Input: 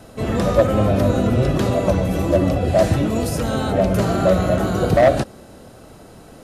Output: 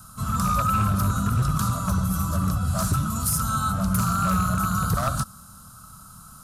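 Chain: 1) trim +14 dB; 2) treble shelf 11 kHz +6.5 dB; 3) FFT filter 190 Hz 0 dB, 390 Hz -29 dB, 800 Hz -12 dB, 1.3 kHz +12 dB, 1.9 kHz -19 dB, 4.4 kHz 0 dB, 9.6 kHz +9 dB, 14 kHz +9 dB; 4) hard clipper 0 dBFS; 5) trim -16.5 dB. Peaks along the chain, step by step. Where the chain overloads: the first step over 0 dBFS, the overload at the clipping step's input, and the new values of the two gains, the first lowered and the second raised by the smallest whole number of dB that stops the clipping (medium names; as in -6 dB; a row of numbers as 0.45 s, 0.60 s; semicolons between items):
+11.0 dBFS, +11.0 dBFS, +8.5 dBFS, 0.0 dBFS, -16.5 dBFS; step 1, 8.5 dB; step 1 +5 dB, step 5 -7.5 dB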